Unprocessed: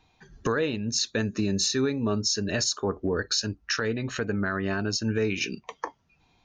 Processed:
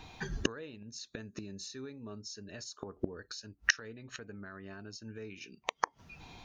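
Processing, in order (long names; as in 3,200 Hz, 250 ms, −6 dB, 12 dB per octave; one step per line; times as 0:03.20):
gate with flip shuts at −24 dBFS, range −32 dB
level +13 dB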